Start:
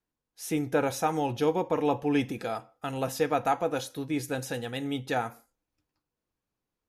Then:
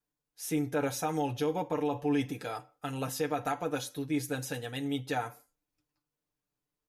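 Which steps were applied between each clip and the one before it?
treble shelf 5.8 kHz +4.5 dB; comb 6.8 ms, depth 69%; peak limiter -16 dBFS, peak gain reduction 6 dB; trim -5 dB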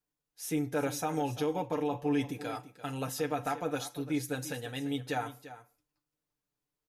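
delay 343 ms -14.5 dB; trim -1 dB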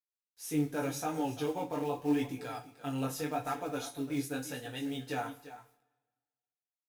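companded quantiser 6-bit; chorus voices 2, 0.83 Hz, delay 19 ms, depth 3.6 ms; reverberation, pre-delay 3 ms, DRR 7 dB

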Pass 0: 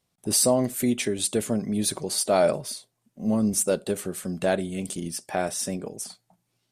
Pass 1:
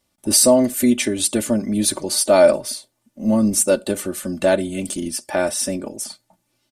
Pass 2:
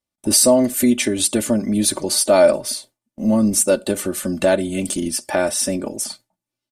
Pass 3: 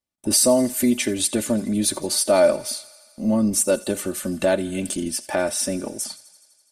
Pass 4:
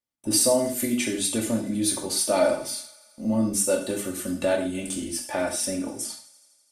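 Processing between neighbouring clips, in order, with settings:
comb 3.4 ms, depth 70%; trim +5 dB
gate with hold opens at -31 dBFS; in parallel at +0.5 dB: compression, threshold -24 dBFS, peak gain reduction 15 dB; on the sum: trim -2 dB
feedback echo behind a high-pass 83 ms, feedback 74%, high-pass 1.4 kHz, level -18.5 dB; trim -3.5 dB
hum notches 50/100/150/200 Hz; gated-style reverb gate 160 ms falling, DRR 0 dB; trim -6 dB

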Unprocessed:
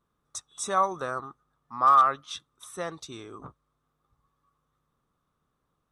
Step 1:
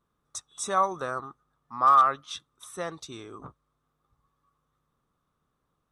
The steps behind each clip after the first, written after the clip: no audible change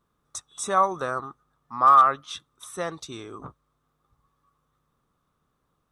dynamic bell 5.1 kHz, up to -4 dB, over -42 dBFS, Q 1; trim +3.5 dB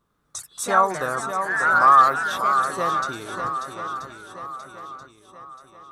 shuffle delay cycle 981 ms, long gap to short 1.5:1, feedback 43%, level -7.5 dB; ever faster or slower copies 93 ms, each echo +3 st, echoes 2, each echo -6 dB; trim +2 dB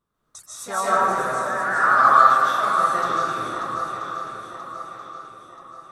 reverberation RT60 1.7 s, pre-delay 110 ms, DRR -8.5 dB; trim -8.5 dB

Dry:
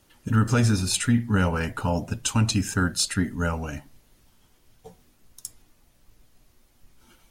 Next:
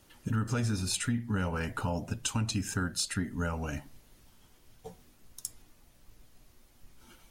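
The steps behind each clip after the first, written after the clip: compression 2.5:1, threshold -32 dBFS, peak gain reduction 11 dB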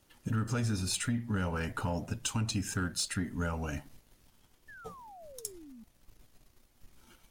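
waveshaping leveller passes 1; painted sound fall, 4.68–5.84 s, 210–1800 Hz -46 dBFS; trim -4.5 dB

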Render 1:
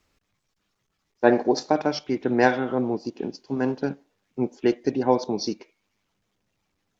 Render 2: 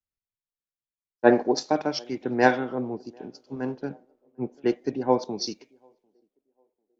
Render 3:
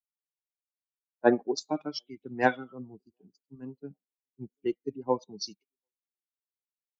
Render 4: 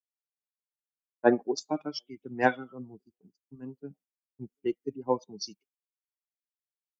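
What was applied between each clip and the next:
band-passed feedback delay 746 ms, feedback 60%, band-pass 470 Hz, level -20 dB; three bands expanded up and down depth 70%; trim -4 dB
expander on every frequency bin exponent 2; trim -2.5 dB
expander -56 dBFS; band-stop 4 kHz, Q 5.8

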